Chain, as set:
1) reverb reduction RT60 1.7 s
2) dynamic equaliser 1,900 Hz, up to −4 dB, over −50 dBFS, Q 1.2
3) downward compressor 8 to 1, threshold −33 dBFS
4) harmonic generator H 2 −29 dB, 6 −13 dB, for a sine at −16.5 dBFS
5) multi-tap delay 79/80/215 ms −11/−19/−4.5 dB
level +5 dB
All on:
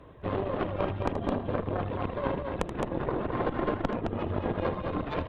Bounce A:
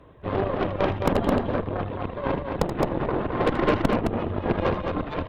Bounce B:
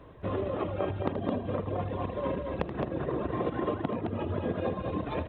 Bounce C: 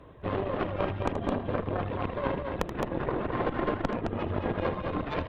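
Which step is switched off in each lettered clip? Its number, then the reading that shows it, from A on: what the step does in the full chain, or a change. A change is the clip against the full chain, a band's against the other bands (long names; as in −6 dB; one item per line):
3, average gain reduction 4.0 dB
4, 2 kHz band −3.5 dB
2, 2 kHz band +2.0 dB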